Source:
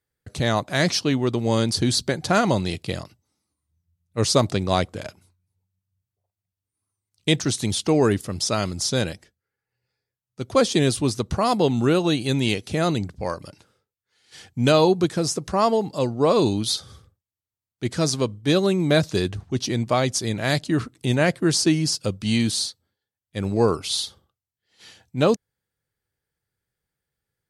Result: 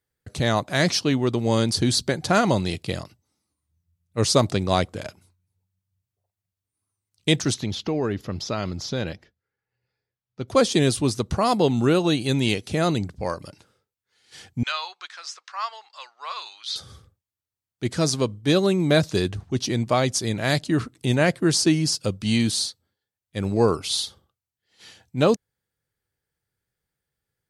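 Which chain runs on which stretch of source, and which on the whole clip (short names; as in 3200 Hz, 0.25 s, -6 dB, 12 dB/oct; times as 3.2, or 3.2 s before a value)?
7.54–10.48 compressor 3:1, threshold -22 dBFS + running mean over 5 samples
14.63–16.76 HPF 1200 Hz 24 dB/oct + air absorption 150 m
whole clip: dry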